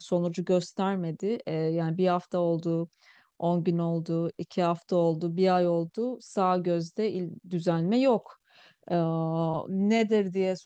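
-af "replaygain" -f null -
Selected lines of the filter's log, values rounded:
track_gain = +7.8 dB
track_peak = 0.156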